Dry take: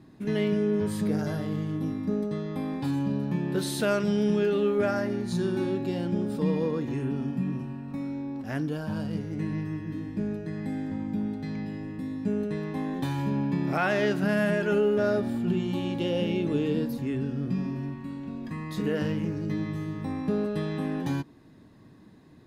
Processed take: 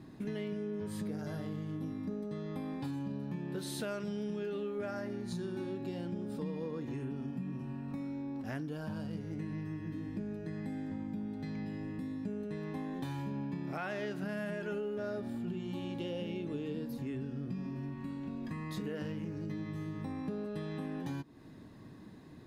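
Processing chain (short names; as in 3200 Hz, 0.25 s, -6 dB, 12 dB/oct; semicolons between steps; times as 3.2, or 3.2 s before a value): compressor 4:1, threshold -39 dBFS, peak gain reduction 15.5 dB; gain +1 dB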